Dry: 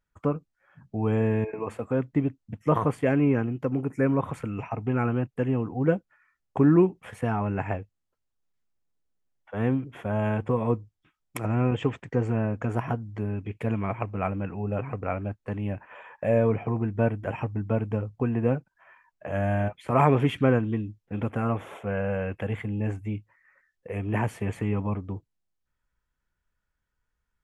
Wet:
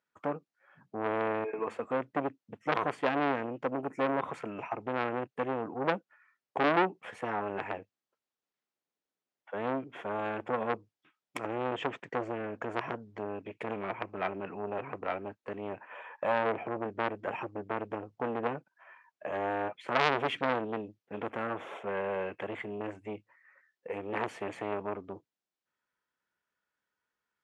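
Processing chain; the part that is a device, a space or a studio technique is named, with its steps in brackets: public-address speaker with an overloaded transformer (transformer saturation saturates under 1.9 kHz; band-pass 290–5700 Hz)

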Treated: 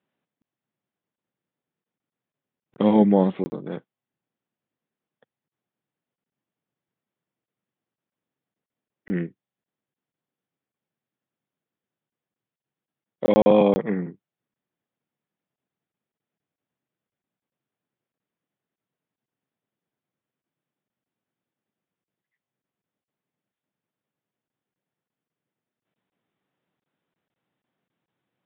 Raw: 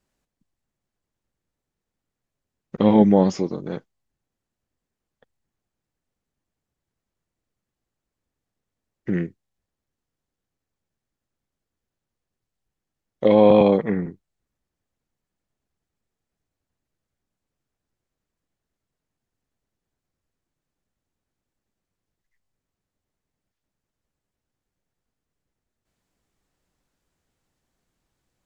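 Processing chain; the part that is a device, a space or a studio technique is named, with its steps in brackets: call with lost packets (high-pass 130 Hz 24 dB/octave; resampled via 8 kHz; lost packets); trim -2 dB

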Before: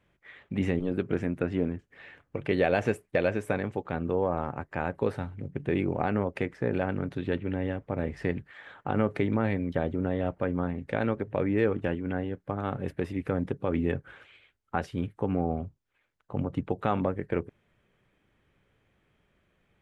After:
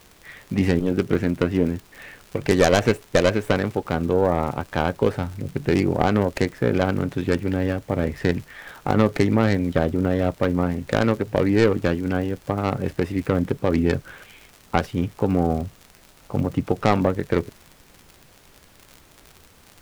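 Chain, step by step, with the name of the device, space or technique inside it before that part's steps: record under a worn stylus (tracing distortion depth 0.28 ms; crackle 71 per s -39 dBFS; pink noise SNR 30 dB); trim +7.5 dB

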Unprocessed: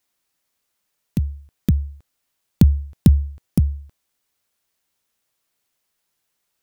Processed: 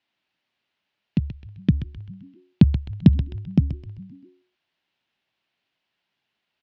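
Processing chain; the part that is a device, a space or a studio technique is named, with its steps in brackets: frequency-shifting delay pedal into a guitar cabinet (frequency-shifting echo 130 ms, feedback 43%, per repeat -87 Hz, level -9 dB; cabinet simulation 80–3900 Hz, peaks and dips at 84 Hz -9 dB, 480 Hz -7 dB, 1.2 kHz -5 dB, 2.8 kHz +4 dB); trim +1.5 dB

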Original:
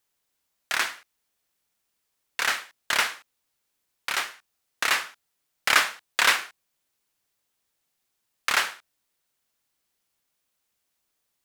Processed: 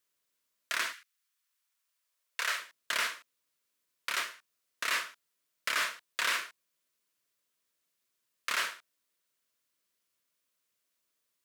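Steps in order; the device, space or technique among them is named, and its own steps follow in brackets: 0.92–2.57 s: high-pass 1.4 kHz -> 400 Hz 24 dB/octave; PA system with an anti-feedback notch (high-pass 180 Hz 6 dB/octave; Butterworth band-stop 800 Hz, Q 4; peak limiter -15.5 dBFS, peak gain reduction 11 dB); trim -3.5 dB

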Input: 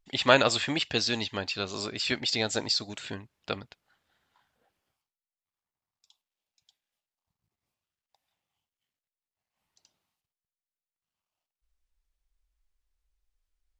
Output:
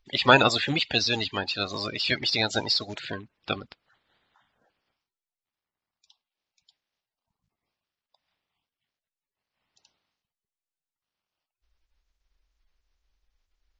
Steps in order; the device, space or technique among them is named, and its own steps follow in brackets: clip after many re-uploads (low-pass 6 kHz 24 dB/octave; coarse spectral quantiser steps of 30 dB); trim +4 dB

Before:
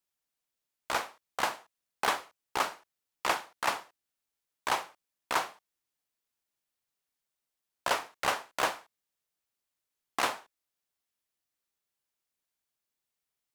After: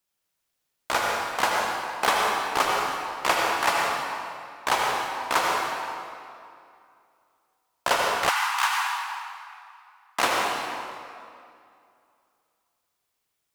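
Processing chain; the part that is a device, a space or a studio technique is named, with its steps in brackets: stairwell (reverberation RT60 2.5 s, pre-delay 73 ms, DRR -2 dB); 8.29–10.19 s: elliptic high-pass 850 Hz, stop band 40 dB; trim +5.5 dB

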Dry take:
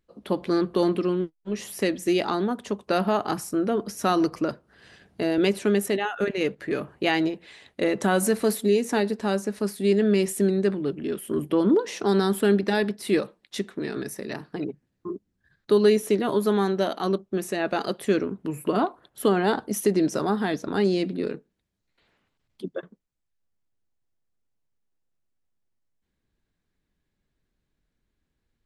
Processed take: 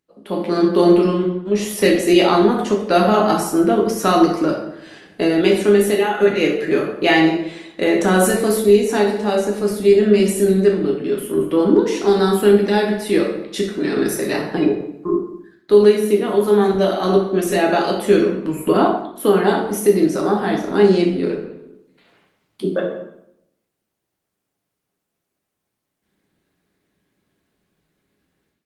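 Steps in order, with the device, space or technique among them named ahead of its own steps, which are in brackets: far-field microphone of a smart speaker (reverberation RT60 0.80 s, pre-delay 7 ms, DRR -1 dB; high-pass 150 Hz 12 dB/octave; level rider gain up to 12 dB; trim -1 dB; Opus 32 kbps 48 kHz)

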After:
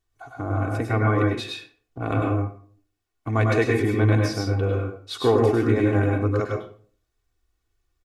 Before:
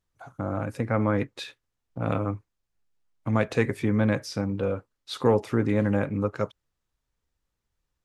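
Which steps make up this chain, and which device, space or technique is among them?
microphone above a desk (comb 2.7 ms, depth 74%; reverberation RT60 0.45 s, pre-delay 93 ms, DRR 0 dB)

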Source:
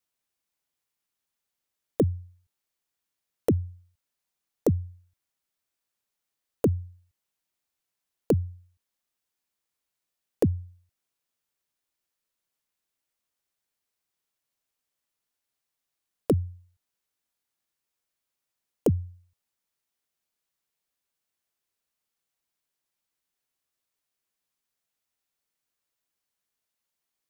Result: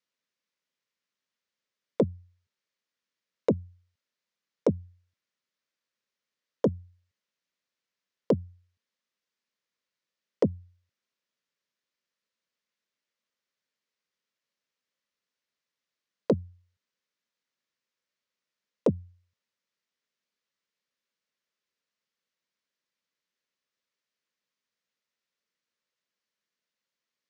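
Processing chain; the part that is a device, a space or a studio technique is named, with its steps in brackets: full-range speaker at full volume (loudspeaker Doppler distortion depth 0.46 ms; cabinet simulation 160–6100 Hz, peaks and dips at 210 Hz +4 dB, 320 Hz -4 dB, 530 Hz +4 dB, 770 Hz -10 dB, 1.9 kHz +3 dB)

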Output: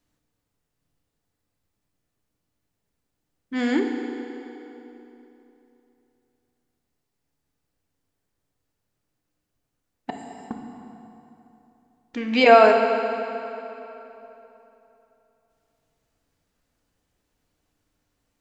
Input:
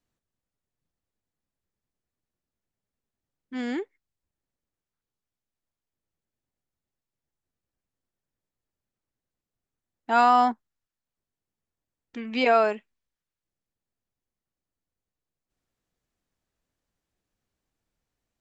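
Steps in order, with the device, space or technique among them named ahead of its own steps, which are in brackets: 10.10–10.51 s: inverse Chebyshev high-pass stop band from 2.5 kHz, stop band 70 dB; compressed reverb return (on a send at -5 dB: reverberation RT60 2.7 s, pre-delay 32 ms + compression, threshold -40 dBFS, peak gain reduction 22.5 dB); on the sum: FDN reverb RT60 2.9 s, high-frequency decay 0.85×, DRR 3.5 dB; trim +6.5 dB

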